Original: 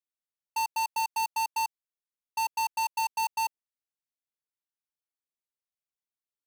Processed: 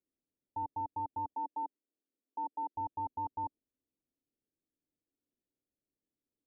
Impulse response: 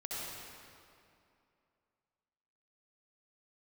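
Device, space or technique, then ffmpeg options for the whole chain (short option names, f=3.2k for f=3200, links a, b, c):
under water: -filter_complex "[0:a]asettb=1/sr,asplit=3[a][b][c];[a]atrim=end=1.344[d];[b]atrim=start=1.34:end=2.75,asetpts=PTS-STARTPTS,afade=t=in:d=0.004:c=qsin,afade=t=out:st=1.406:d=0.004:c=qsin,highpass=f=230:w=0.5412,highpass=f=230:w=1.3066[e];[c]atrim=start=2.746[f];[d][e]acrossfade=d=0.004:c1=hsin:c2=qsin[g];[g][f]acrossfade=d=0.004:c1=qsin:c2=hsin,lowpass=f=530:w=0.5412,lowpass=f=530:w=1.3066,equalizer=f=280:t=o:w=0.59:g=10,volume=10.5dB"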